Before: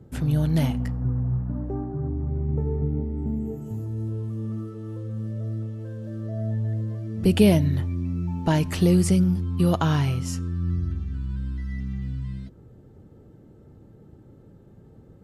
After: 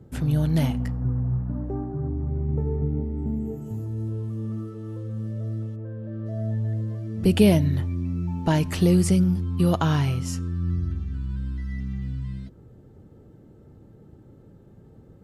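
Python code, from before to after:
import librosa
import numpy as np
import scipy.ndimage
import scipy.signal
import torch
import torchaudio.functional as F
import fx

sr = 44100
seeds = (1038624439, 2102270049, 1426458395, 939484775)

y = fx.lowpass(x, sr, hz=fx.line((5.75, 1400.0), (6.25, 2800.0)), slope=12, at=(5.75, 6.25), fade=0.02)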